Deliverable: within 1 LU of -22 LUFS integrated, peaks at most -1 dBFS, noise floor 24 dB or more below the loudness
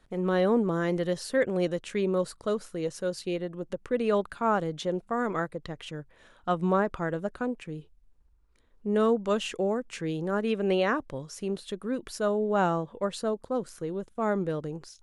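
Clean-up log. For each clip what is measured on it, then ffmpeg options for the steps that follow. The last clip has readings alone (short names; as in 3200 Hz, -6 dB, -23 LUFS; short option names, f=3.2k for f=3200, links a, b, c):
loudness -29.5 LUFS; peak -13.5 dBFS; loudness target -22.0 LUFS
-> -af "volume=7.5dB"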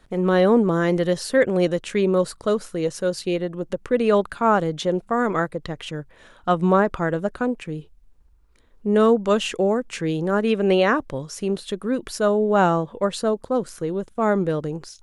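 loudness -22.0 LUFS; peak -6.0 dBFS; noise floor -53 dBFS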